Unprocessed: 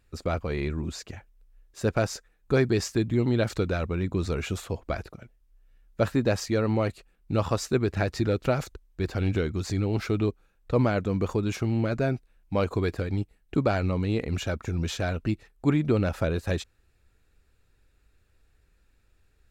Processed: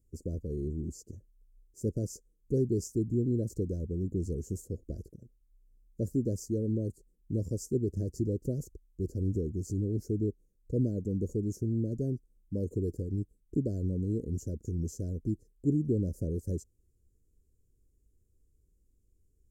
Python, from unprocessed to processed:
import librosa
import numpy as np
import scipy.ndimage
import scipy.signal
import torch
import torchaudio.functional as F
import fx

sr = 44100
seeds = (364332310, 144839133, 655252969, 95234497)

y = scipy.signal.sosfilt(scipy.signal.cheby2(4, 40, [770.0, 3800.0], 'bandstop', fs=sr, output='sos'), x)
y = y * 10.0 ** (-4.5 / 20.0)